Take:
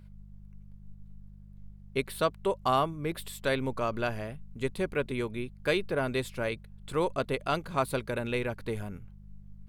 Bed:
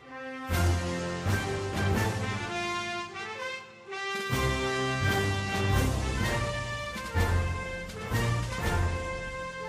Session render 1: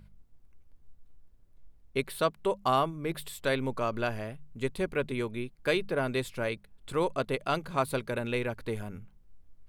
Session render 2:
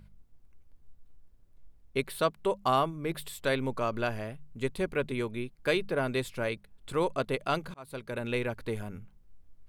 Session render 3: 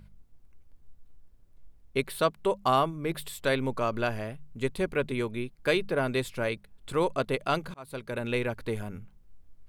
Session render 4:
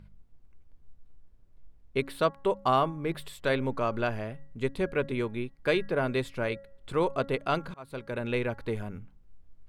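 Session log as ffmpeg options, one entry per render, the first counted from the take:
ffmpeg -i in.wav -af "bandreject=frequency=50:width_type=h:width=4,bandreject=frequency=100:width_type=h:width=4,bandreject=frequency=150:width_type=h:width=4,bandreject=frequency=200:width_type=h:width=4" out.wav
ffmpeg -i in.wav -filter_complex "[0:a]asplit=2[link_01][link_02];[link_01]atrim=end=7.74,asetpts=PTS-STARTPTS,afade=type=out:start_time=7.736:duration=0.004:curve=hsin[link_03];[link_02]atrim=start=7.74,asetpts=PTS-STARTPTS,afade=type=in:duration=0.58[link_04];[link_03][link_04]concat=n=2:v=0:a=1" out.wav
ffmpeg -i in.wav -af "volume=2dB" out.wav
ffmpeg -i in.wav -af "lowpass=frequency=3500:poles=1,bandreject=frequency=275.8:width_type=h:width=4,bandreject=frequency=551.6:width_type=h:width=4,bandreject=frequency=827.4:width_type=h:width=4,bandreject=frequency=1103.2:width_type=h:width=4,bandreject=frequency=1379:width_type=h:width=4,bandreject=frequency=1654.8:width_type=h:width=4,bandreject=frequency=1930.6:width_type=h:width=4" out.wav

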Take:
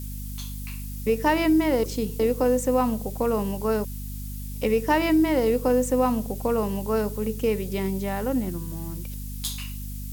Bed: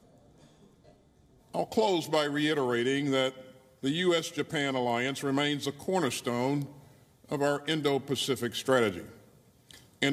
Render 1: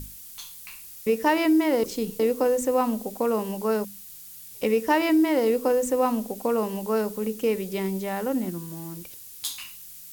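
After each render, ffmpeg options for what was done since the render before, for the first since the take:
ffmpeg -i in.wav -af "bandreject=frequency=50:width_type=h:width=6,bandreject=frequency=100:width_type=h:width=6,bandreject=frequency=150:width_type=h:width=6,bandreject=frequency=200:width_type=h:width=6,bandreject=frequency=250:width_type=h:width=6" out.wav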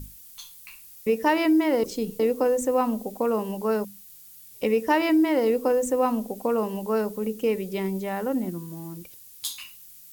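ffmpeg -i in.wav -af "afftdn=noise_reduction=6:noise_floor=-44" out.wav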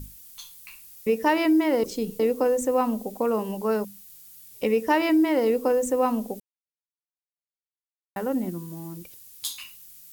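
ffmpeg -i in.wav -filter_complex "[0:a]asplit=3[link_01][link_02][link_03];[link_01]atrim=end=6.4,asetpts=PTS-STARTPTS,afade=type=out:start_time=6.396:duration=0.004:curve=hsin[link_04];[link_02]atrim=start=6.4:end=8.16,asetpts=PTS-STARTPTS,volume=0[link_05];[link_03]atrim=start=8.16,asetpts=PTS-STARTPTS,afade=type=in:duration=0.004:curve=hsin[link_06];[link_04][link_05][link_06]concat=n=3:v=0:a=1" out.wav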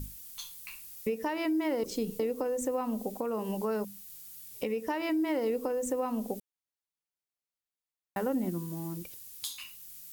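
ffmpeg -i in.wav -af "acompressor=threshold=-25dB:ratio=6,alimiter=limit=-21.5dB:level=0:latency=1:release=494" out.wav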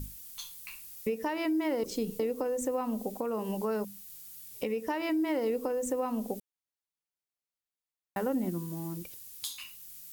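ffmpeg -i in.wav -af anull out.wav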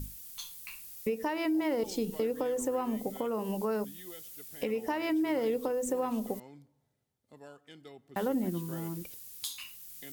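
ffmpeg -i in.wav -i bed.wav -filter_complex "[1:a]volume=-23dB[link_01];[0:a][link_01]amix=inputs=2:normalize=0" out.wav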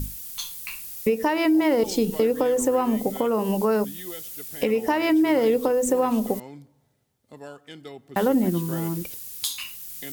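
ffmpeg -i in.wav -af "volume=10dB" out.wav

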